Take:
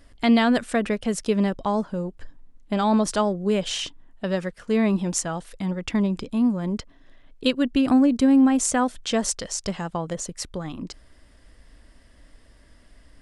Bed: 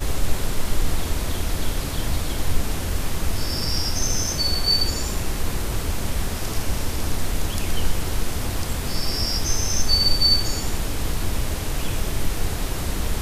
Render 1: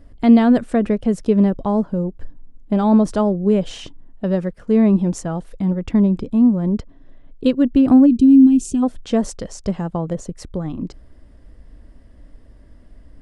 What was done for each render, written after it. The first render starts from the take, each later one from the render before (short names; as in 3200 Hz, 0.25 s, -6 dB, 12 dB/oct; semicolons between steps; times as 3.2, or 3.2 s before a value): 8.06–8.83 spectral gain 430–2400 Hz -22 dB; tilt shelf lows +8.5 dB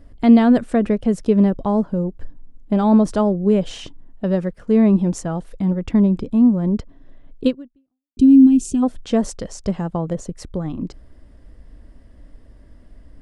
7.47–8.17 fade out exponential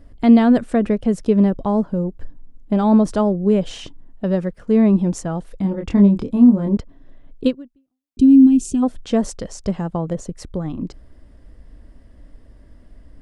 5.62–6.77 doubler 25 ms -4 dB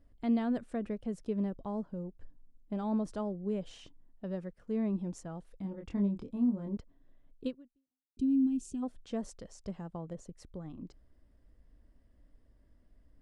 gain -18.5 dB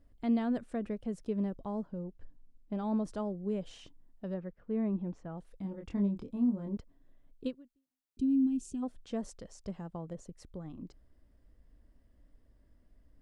1.87–2.84 LPF 6400 Hz; 4.34–5.38 LPF 2400 Hz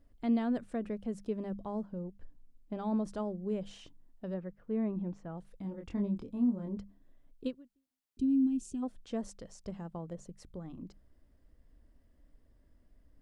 notches 50/100/150/200 Hz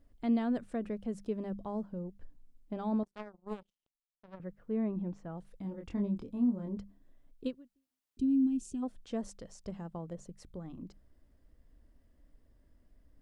3.03–4.4 power-law curve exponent 3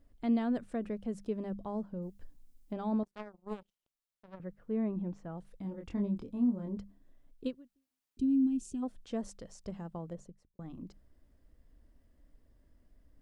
2.02–2.73 high shelf 3800 Hz +11 dB; 10.08–10.59 studio fade out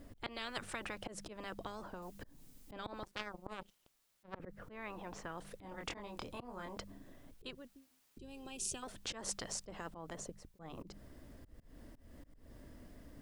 auto swell 0.207 s; spectral compressor 10:1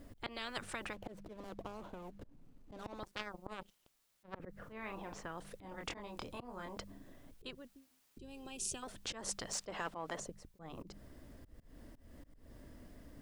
0.93–3 median filter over 25 samples; 4.52–5.13 doubler 41 ms -6.5 dB; 9.53–10.2 overdrive pedal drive 15 dB, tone 4200 Hz, clips at -25 dBFS